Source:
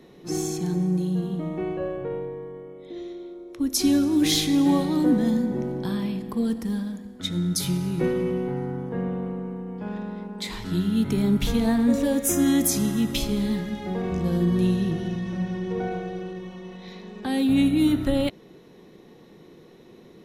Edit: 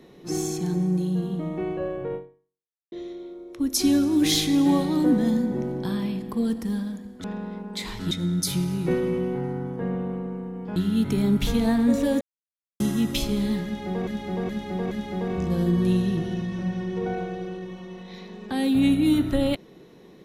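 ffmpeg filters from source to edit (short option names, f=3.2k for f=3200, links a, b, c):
-filter_complex "[0:a]asplit=10[a][b][c][d][e][f][g][h][i][j];[a]atrim=end=2.92,asetpts=PTS-STARTPTS,afade=t=out:st=2.15:d=0.77:c=exp[k];[b]atrim=start=2.92:end=7.242,asetpts=PTS-STARTPTS,afade=t=in:d=0.004:c=hsin[l];[c]atrim=start=9.888:end=10.762[m];[d]atrim=start=7.238:end=9.892[n];[e]atrim=start=10.758:end=12.21,asetpts=PTS-STARTPTS,afade=t=out:st=1.448:d=0.004:c=hsin[o];[f]atrim=start=12.21:end=12.8,asetpts=PTS-STARTPTS,volume=0[p];[g]atrim=start=12.8:end=14.072,asetpts=PTS-STARTPTS,afade=t=in:d=0.004:c=hsin[q];[h]atrim=start=13.648:end=14.072[r];[i]atrim=start=13.648:end=14.072[s];[j]atrim=start=13.648[t];[k][l]concat=n=2:v=0:a=1[u];[u][m]acrossfade=d=0.004:c1=hsin:c2=hsin[v];[v][n]acrossfade=d=0.004:c1=hsin:c2=hsin[w];[o][p][q]concat=n=3:v=0:a=1[x];[w][x]acrossfade=d=0.004:c1=hsin:c2=hsin[y];[y][r]acrossfade=d=0.004:c1=hsin:c2=hsin[z];[z][s]acrossfade=d=0.004:c1=hsin:c2=hsin[aa];[aa][t]acrossfade=d=0.004:c1=hsin:c2=hsin"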